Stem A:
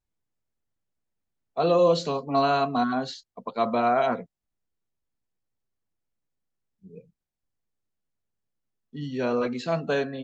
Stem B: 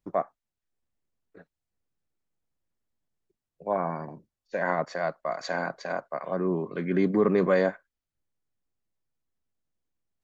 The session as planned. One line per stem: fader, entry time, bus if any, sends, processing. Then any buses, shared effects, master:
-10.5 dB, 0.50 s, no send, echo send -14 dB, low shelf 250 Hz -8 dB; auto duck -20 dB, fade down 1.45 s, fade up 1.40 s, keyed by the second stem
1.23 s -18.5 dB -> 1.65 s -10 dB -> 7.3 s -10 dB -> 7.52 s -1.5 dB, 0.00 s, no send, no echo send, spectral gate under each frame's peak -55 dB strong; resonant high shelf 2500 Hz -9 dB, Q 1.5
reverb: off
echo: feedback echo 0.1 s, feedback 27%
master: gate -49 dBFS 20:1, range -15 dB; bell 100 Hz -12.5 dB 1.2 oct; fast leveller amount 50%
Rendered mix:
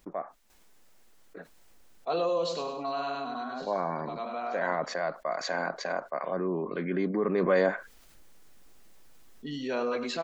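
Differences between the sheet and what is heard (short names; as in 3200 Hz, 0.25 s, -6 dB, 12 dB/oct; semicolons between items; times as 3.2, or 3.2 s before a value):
stem B: missing resonant high shelf 2500 Hz -9 dB, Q 1.5; master: missing gate -49 dBFS 20:1, range -15 dB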